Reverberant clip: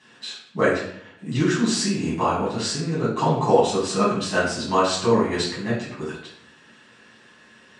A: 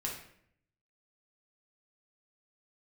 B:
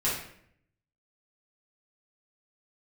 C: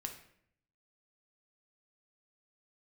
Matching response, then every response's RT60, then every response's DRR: B; 0.65 s, 0.65 s, 0.65 s; -3.0 dB, -9.5 dB, 3.5 dB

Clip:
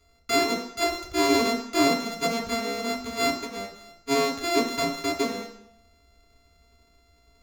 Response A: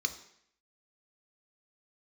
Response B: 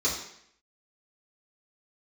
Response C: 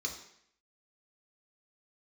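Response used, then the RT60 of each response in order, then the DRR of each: C; 0.70 s, 0.70 s, 0.70 s; 5.5 dB, -9.5 dB, -1.0 dB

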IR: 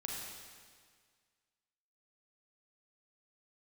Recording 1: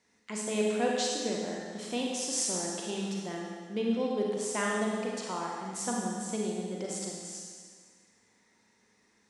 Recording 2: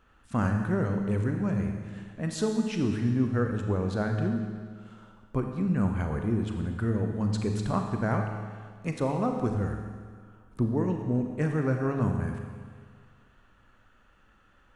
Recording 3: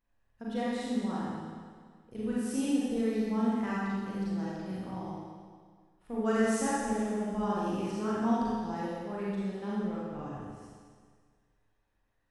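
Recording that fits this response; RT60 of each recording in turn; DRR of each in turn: 1; 1.8 s, 1.8 s, 1.8 s; -2.5 dB, 4.0 dB, -8.5 dB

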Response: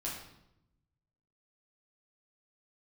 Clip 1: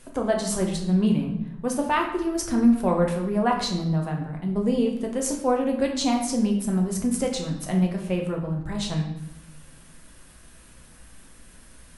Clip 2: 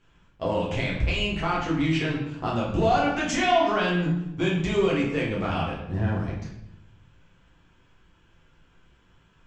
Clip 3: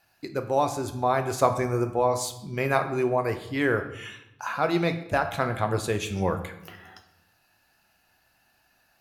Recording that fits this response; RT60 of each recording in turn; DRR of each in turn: 2; 0.85 s, 0.85 s, 0.85 s; 0.5 dB, -5.5 dB, 6.5 dB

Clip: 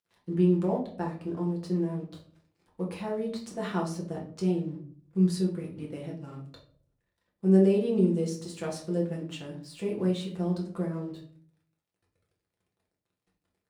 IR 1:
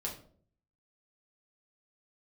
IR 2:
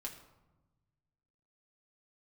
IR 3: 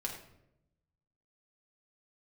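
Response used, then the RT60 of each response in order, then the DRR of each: 1; 0.55 s, 1.1 s, 0.85 s; -2.5 dB, -1.0 dB, -1.0 dB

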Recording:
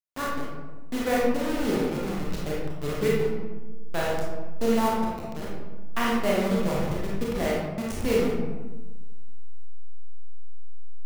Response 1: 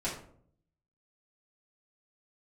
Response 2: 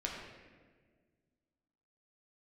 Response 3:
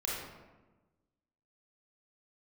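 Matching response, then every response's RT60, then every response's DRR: 3; 0.60 s, 1.6 s, 1.2 s; -9.0 dB, -2.5 dB, -5.5 dB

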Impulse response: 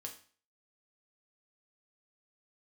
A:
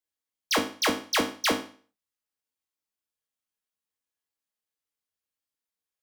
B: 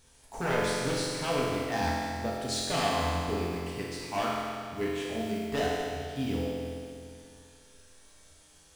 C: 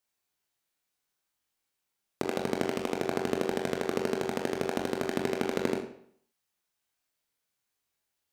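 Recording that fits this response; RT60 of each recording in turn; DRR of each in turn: A; 0.40 s, 2.4 s, 0.60 s; 1.5 dB, -6.0 dB, 0.5 dB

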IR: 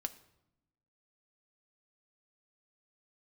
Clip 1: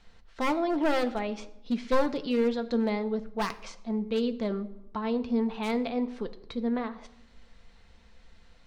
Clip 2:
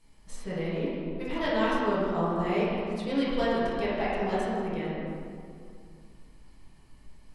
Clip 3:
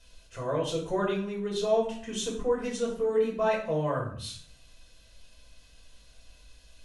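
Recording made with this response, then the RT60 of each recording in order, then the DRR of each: 1; 0.85 s, 2.3 s, 0.55 s; 7.5 dB, -11.0 dB, -4.0 dB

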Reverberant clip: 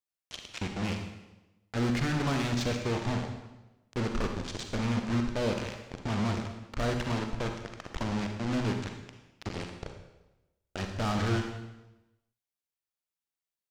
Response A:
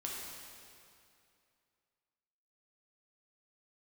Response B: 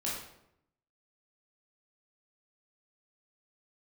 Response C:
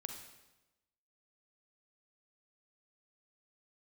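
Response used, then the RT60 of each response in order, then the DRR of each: C; 2.5 s, 0.80 s, 1.0 s; -4.0 dB, -6.0 dB, 4.0 dB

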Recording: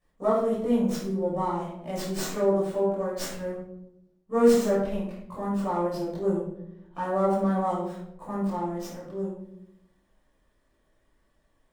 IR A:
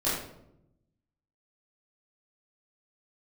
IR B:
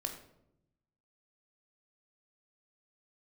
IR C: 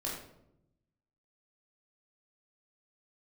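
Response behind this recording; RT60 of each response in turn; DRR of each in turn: A; 0.80 s, 0.80 s, 0.80 s; -11.0 dB, 4.0 dB, -4.5 dB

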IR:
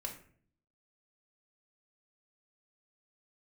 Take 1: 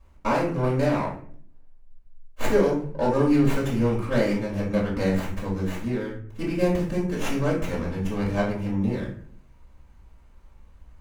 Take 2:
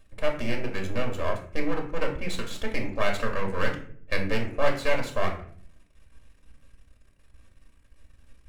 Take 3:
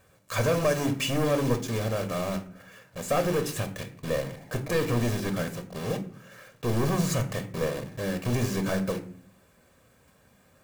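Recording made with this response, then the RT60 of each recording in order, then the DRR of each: 2; 0.50 s, 0.50 s, 0.55 s; -6.0 dB, 1.0 dB, 6.5 dB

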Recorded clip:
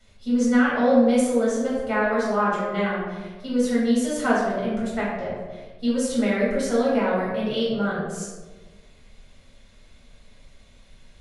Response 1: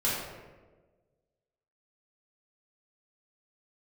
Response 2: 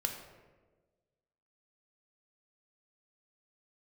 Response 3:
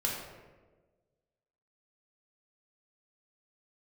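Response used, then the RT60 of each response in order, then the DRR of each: 1; 1.4 s, 1.4 s, 1.4 s; -8.5 dB, 3.5 dB, -3.0 dB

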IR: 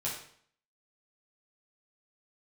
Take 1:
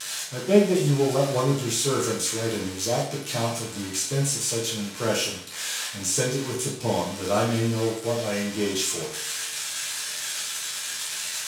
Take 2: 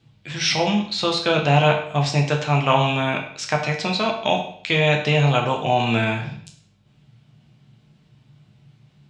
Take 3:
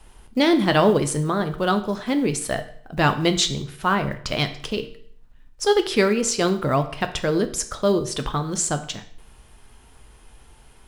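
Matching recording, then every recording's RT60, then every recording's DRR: 1; 0.60 s, 0.60 s, 0.60 s; -6.0 dB, 1.0 dB, 7.5 dB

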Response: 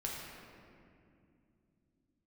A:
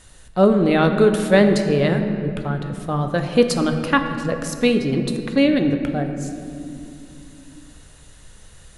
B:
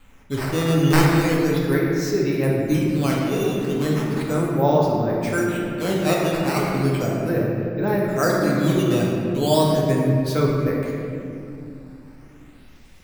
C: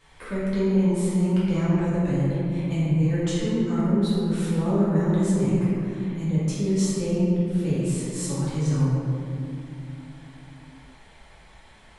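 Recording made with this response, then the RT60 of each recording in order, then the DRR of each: B; no single decay rate, 2.6 s, 2.5 s; 5.5 dB, -3.5 dB, -10.5 dB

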